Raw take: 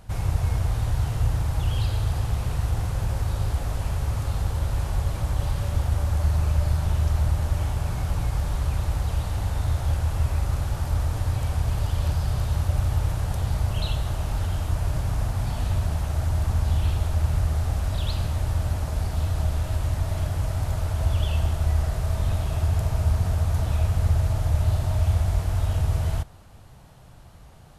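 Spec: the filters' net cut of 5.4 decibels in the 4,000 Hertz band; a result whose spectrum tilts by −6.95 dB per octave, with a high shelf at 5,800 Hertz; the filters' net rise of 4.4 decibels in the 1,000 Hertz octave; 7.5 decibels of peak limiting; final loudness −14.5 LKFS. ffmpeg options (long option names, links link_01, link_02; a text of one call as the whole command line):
ffmpeg -i in.wav -af "equalizer=frequency=1000:width_type=o:gain=6,equalizer=frequency=4000:width_type=o:gain=-6,highshelf=frequency=5800:gain=-4,volume=12.5dB,alimiter=limit=-4.5dB:level=0:latency=1" out.wav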